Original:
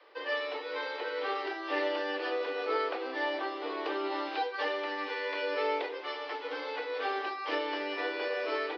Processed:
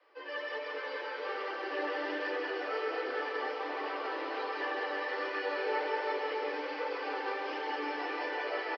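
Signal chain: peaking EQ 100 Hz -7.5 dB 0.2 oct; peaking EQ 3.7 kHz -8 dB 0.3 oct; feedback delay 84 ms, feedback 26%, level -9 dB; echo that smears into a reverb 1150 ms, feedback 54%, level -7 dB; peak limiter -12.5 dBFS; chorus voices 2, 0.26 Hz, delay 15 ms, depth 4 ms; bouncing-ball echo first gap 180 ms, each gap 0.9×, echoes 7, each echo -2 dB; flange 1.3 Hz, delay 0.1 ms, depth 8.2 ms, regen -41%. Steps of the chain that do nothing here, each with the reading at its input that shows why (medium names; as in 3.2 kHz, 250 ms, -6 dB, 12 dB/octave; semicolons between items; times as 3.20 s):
peaking EQ 100 Hz: input has nothing below 250 Hz; peak limiter -12.5 dBFS: peak at its input -18.0 dBFS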